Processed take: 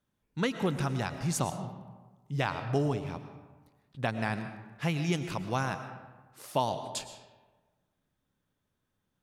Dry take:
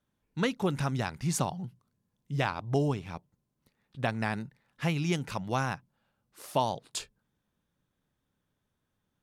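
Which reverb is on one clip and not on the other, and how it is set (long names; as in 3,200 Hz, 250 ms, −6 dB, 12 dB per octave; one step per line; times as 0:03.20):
comb and all-pass reverb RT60 1.3 s, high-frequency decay 0.55×, pre-delay 75 ms, DRR 9 dB
level −1 dB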